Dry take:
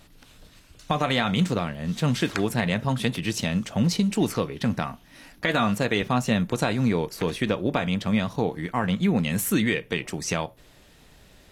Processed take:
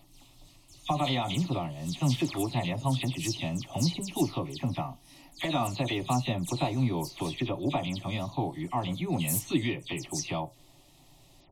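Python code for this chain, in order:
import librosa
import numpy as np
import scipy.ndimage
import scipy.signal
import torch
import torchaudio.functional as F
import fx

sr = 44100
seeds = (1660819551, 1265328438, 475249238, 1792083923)

y = fx.spec_delay(x, sr, highs='early', ms=111)
y = fx.fixed_phaser(y, sr, hz=310.0, stages=8)
y = y * 10.0 ** (-1.5 / 20.0)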